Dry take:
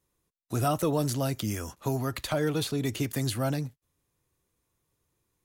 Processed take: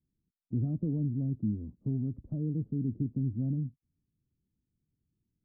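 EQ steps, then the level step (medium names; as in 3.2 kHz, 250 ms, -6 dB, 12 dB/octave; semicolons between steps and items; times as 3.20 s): four-pole ladder low-pass 270 Hz, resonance 45%; +5.5 dB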